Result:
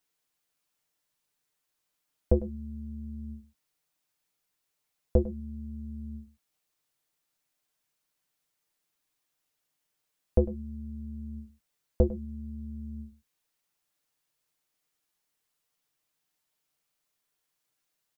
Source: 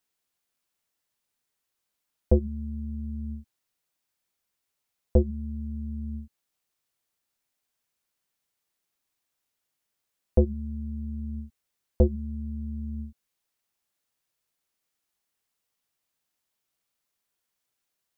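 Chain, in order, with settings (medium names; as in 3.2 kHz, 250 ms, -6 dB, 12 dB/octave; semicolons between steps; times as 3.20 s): comb 6.6 ms, depth 44%; on a send: delay 101 ms -16.5 dB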